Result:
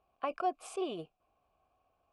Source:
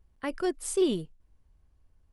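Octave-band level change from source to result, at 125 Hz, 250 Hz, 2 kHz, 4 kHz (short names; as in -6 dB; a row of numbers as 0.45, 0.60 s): -13.5, -12.0, -7.5, -9.0 dB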